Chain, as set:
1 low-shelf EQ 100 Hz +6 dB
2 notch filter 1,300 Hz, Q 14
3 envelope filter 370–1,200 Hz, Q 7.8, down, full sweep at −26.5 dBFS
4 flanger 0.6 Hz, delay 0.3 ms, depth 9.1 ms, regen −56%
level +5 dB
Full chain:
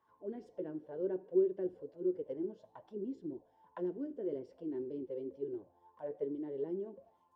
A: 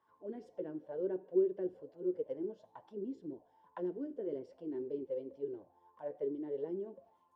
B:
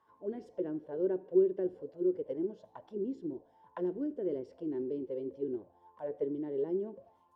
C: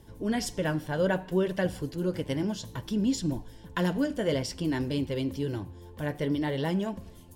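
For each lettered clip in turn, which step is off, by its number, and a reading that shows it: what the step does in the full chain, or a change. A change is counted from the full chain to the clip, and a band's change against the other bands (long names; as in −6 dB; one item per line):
1, 1 kHz band +2.0 dB
4, change in integrated loudness +4.0 LU
3, 500 Hz band −13.0 dB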